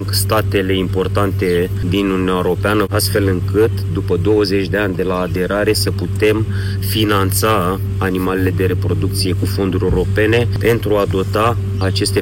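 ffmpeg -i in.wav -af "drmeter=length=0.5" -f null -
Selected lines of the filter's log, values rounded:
Channel 1: DR: 6.2
Overall DR: 6.2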